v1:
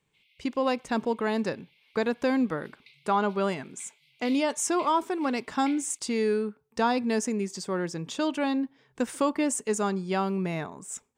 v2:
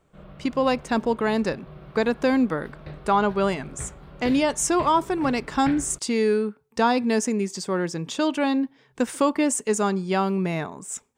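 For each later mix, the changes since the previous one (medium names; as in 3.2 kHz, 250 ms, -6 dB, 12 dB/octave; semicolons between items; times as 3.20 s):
speech +4.5 dB; background: remove brick-wall FIR band-pass 2–14 kHz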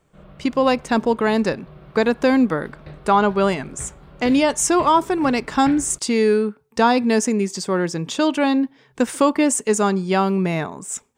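speech +4.5 dB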